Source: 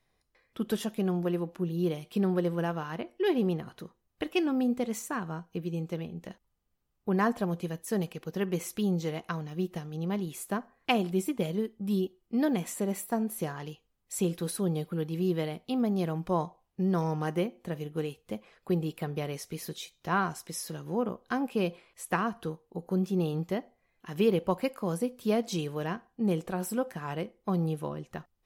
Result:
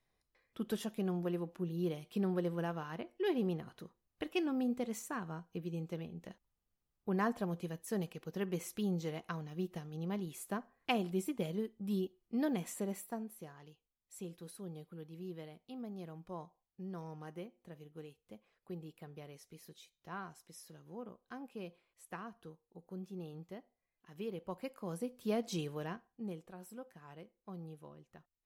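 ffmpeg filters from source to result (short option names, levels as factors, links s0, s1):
-af "volume=1.58,afade=t=out:st=12.78:d=0.6:silence=0.316228,afade=t=in:st=24.34:d=1.26:silence=0.281838,afade=t=out:st=25.6:d=0.81:silence=0.237137"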